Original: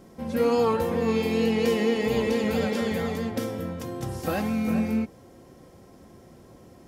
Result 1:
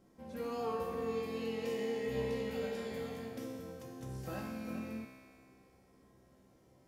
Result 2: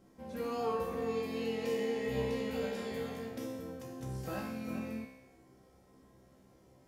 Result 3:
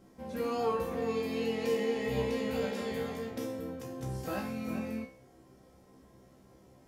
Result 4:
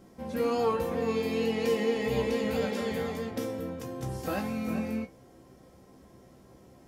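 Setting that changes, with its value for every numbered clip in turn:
resonator, decay: 2.1, 1, 0.43, 0.16 s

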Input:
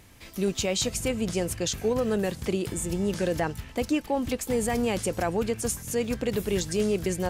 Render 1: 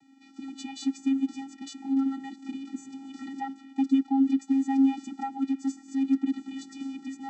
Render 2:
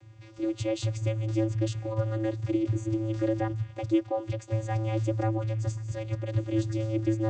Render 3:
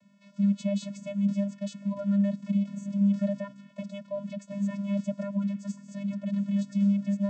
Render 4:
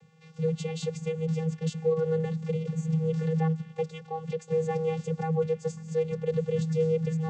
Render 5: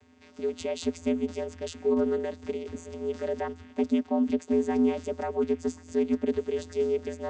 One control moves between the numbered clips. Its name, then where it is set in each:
vocoder, frequency: 270, 110, 200, 160, 84 Hz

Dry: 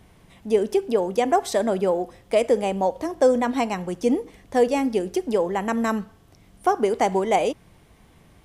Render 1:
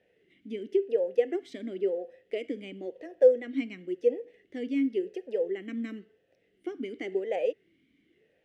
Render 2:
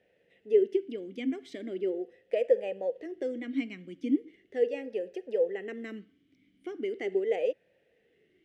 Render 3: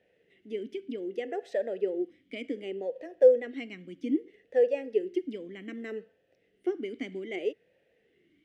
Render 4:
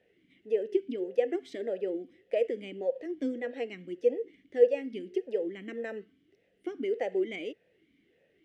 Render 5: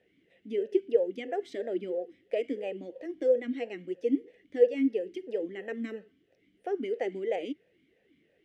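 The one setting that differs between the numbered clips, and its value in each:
vowel sweep, rate: 0.95, 0.39, 0.64, 1.7, 3 Hz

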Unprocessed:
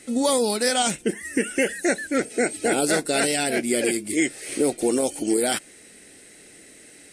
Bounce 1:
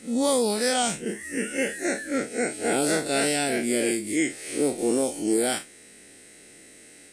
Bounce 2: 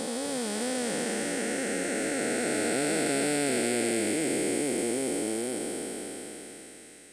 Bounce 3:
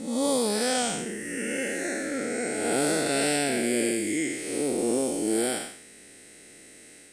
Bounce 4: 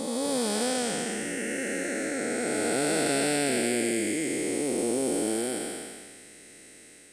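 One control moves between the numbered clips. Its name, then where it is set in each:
time blur, width: 83, 1590, 235, 644 ms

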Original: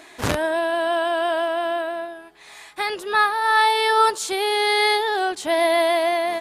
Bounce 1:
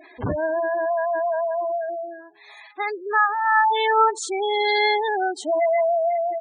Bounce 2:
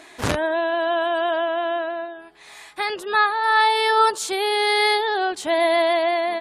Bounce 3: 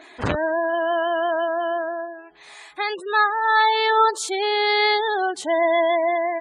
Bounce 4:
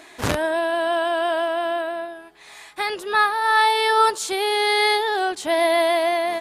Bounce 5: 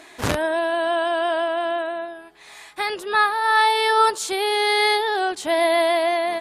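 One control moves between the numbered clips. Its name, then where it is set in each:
spectral gate, under each frame's peak: -10, -35, -20, -60, -45 dB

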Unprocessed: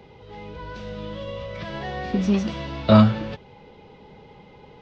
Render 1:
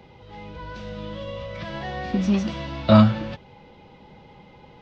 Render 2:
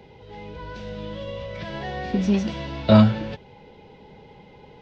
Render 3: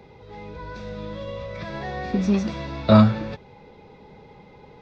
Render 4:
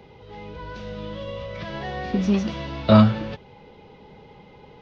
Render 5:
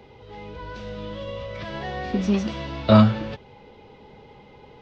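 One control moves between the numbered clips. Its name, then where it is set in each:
notch, frequency: 430, 1200, 3000, 7700, 170 Hz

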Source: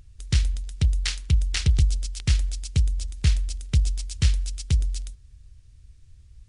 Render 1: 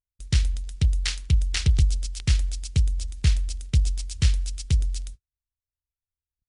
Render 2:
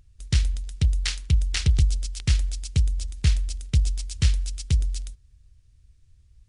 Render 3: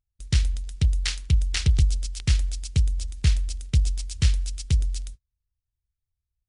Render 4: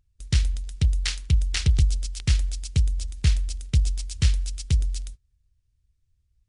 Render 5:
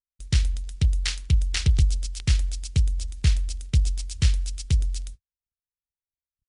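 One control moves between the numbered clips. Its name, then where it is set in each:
gate, range: -46, -6, -34, -19, -59 dB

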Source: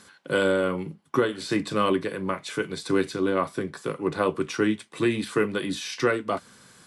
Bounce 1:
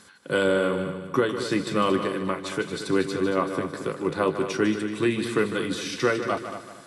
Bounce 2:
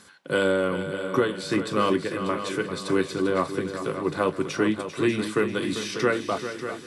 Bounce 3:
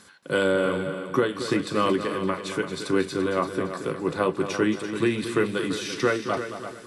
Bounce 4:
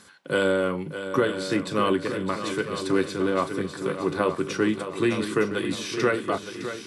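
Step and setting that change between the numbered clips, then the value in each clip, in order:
multi-head echo, time: 76, 197, 113, 305 ms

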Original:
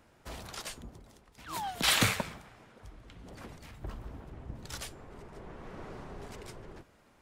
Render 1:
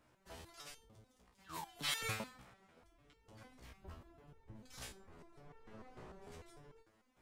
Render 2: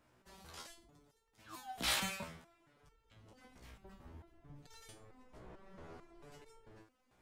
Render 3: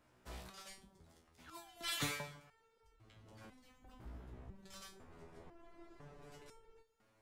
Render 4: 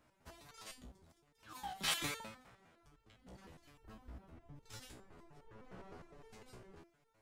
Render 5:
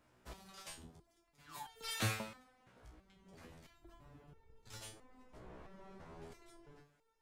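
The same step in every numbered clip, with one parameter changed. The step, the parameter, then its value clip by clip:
stepped resonator, rate: 6.7, 4.5, 2, 9.8, 3 Hz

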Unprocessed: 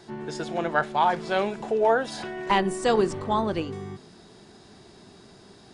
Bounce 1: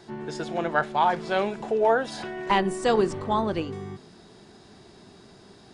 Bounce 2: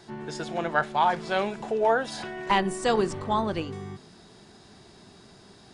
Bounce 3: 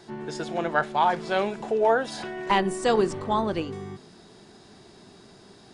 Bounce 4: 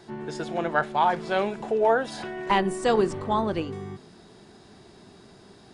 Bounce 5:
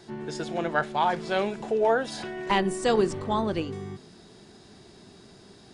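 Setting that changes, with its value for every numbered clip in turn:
bell, frequency: 16000, 370, 66, 5900, 970 Hz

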